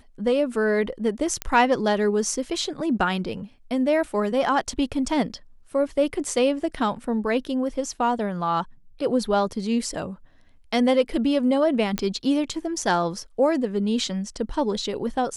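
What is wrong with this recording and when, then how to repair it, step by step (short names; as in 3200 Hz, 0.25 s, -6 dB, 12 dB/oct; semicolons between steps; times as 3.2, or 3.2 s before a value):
1.42 pop -9 dBFS
11.98 pop -10 dBFS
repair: de-click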